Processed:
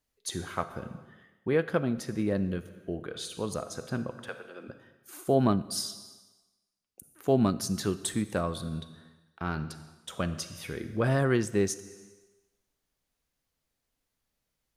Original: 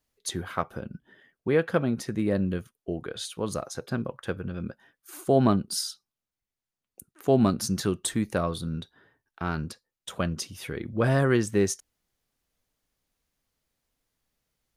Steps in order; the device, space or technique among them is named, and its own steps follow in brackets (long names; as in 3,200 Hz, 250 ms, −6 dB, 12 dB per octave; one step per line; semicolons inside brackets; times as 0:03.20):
0:04.27–0:04.67: high-pass filter 590 Hz → 290 Hz 24 dB per octave
compressed reverb return (on a send at −8 dB: convolution reverb RT60 1.1 s, pre-delay 33 ms + downward compressor 6 to 1, threshold −30 dBFS, peak gain reduction 12 dB)
on the sum: level −3 dB